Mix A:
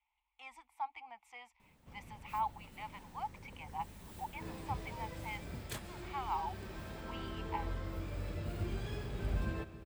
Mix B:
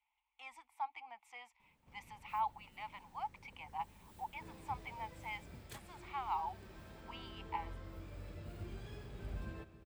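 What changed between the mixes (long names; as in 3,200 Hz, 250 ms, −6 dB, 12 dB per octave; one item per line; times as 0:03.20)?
speech: add low-shelf EQ 250 Hz −9 dB
background −8.5 dB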